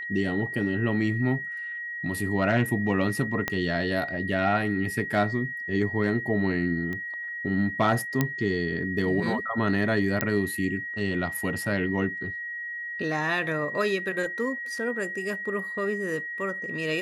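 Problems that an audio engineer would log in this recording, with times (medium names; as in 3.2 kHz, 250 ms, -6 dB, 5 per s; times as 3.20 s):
whine 1.9 kHz -32 dBFS
3.48 s: pop -11 dBFS
6.93 s: pop -22 dBFS
8.21 s: pop -9 dBFS
10.21 s: pop -8 dBFS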